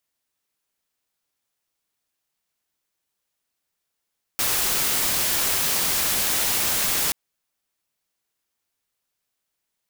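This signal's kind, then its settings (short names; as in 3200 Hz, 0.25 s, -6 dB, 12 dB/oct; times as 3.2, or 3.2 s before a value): noise white, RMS -22.5 dBFS 2.73 s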